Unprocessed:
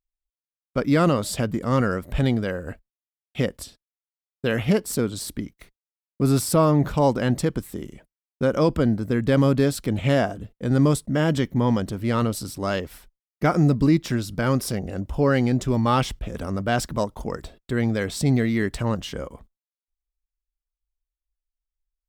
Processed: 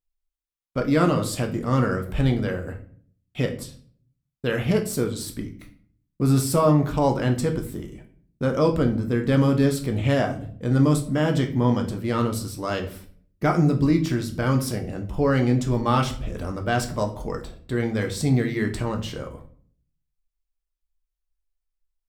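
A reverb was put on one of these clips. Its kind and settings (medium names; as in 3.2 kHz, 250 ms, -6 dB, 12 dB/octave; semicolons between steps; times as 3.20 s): simulated room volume 54 m³, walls mixed, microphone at 0.44 m; trim -2.5 dB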